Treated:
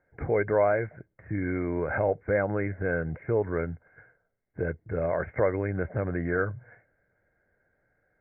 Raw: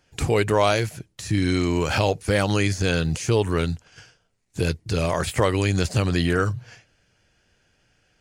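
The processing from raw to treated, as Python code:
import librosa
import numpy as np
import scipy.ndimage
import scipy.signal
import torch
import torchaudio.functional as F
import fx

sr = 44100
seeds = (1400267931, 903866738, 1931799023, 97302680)

y = scipy.signal.sosfilt(scipy.signal.cheby1(6, 9, 2200.0, 'lowpass', fs=sr, output='sos'), x)
y = F.gain(torch.from_numpy(y), -1.0).numpy()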